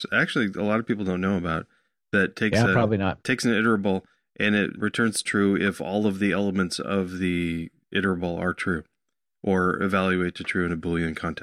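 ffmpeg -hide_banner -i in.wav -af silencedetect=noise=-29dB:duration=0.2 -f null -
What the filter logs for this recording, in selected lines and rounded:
silence_start: 1.61
silence_end: 2.13 | silence_duration: 0.52
silence_start: 3.99
silence_end: 4.40 | silence_duration: 0.41
silence_start: 7.67
silence_end: 7.93 | silence_duration: 0.26
silence_start: 8.79
silence_end: 9.44 | silence_duration: 0.65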